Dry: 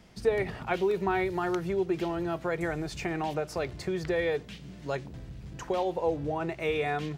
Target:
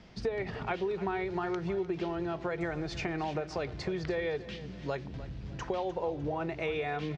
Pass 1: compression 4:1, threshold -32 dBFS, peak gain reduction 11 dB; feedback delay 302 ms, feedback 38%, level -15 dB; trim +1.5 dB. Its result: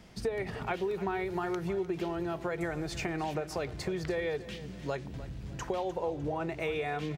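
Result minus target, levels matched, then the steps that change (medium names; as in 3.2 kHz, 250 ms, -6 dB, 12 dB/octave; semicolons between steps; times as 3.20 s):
8 kHz band +6.5 dB
add after compression: low-pass 5.7 kHz 24 dB/octave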